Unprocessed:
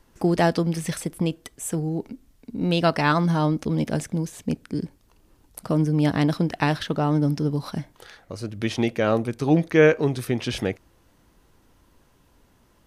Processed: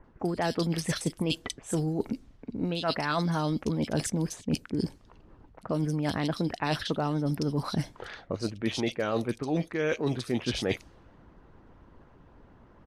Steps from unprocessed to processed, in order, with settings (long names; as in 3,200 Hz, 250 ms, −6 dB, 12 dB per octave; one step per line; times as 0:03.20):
multiband delay without the direct sound lows, highs 40 ms, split 2,600 Hz
harmonic and percussive parts rebalanced percussive +7 dB
dynamic equaliser 4,000 Hz, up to +4 dB, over −41 dBFS, Q 1.2
reversed playback
downward compressor 12 to 1, threshold −26 dBFS, peak gain reduction 17.5 dB
reversed playback
low-pass that shuts in the quiet parts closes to 1,700 Hz, open at −26.5 dBFS
level +1 dB